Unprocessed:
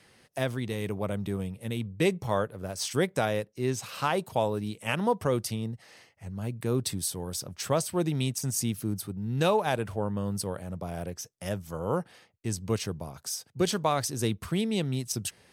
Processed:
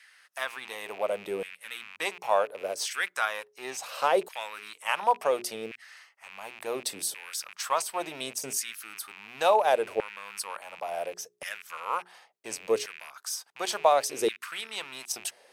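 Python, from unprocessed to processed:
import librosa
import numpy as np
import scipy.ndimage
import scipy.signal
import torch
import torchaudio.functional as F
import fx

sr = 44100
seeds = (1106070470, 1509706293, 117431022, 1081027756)

y = fx.rattle_buzz(x, sr, strikes_db=-41.0, level_db=-34.0)
y = fx.hum_notches(y, sr, base_hz=60, count=7)
y = fx.filter_lfo_highpass(y, sr, shape='saw_down', hz=0.7, low_hz=420.0, high_hz=1800.0, q=2.5)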